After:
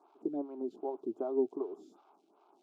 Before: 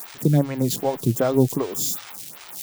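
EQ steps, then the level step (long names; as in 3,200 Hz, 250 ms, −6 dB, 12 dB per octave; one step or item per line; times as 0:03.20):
four-pole ladder band-pass 470 Hz, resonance 55%
phaser with its sweep stopped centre 500 Hz, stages 6
0.0 dB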